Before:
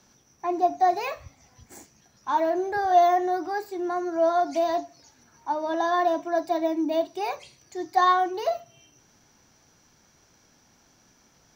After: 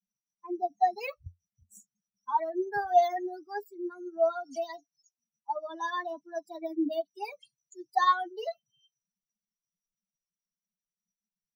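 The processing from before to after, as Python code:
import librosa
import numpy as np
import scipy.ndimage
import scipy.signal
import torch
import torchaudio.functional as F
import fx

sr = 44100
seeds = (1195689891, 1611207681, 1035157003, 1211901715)

y = fx.bin_expand(x, sr, power=3.0)
y = fx.peak_eq(y, sr, hz=88.0, db=9.0, octaves=0.38)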